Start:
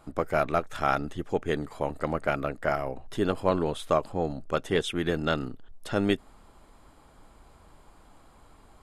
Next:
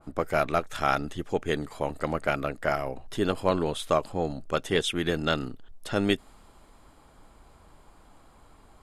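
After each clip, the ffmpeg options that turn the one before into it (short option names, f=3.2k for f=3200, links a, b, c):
-af "adynamicequalizer=threshold=0.00794:dfrequency=2100:dqfactor=0.7:tfrequency=2100:tqfactor=0.7:attack=5:release=100:ratio=0.375:range=2.5:mode=boostabove:tftype=highshelf"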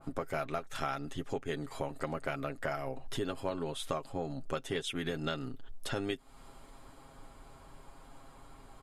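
-af "aecho=1:1:7.4:0.54,acompressor=threshold=-34dB:ratio=4"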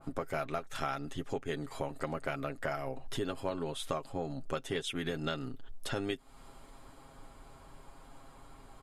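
-af anull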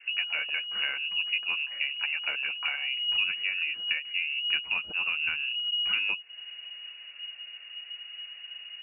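-af "lowshelf=f=370:g=10.5,lowpass=f=2.5k:t=q:w=0.5098,lowpass=f=2.5k:t=q:w=0.6013,lowpass=f=2.5k:t=q:w=0.9,lowpass=f=2.5k:t=q:w=2.563,afreqshift=-2900" -ar 8000 -c:a libmp3lame -b:a 64k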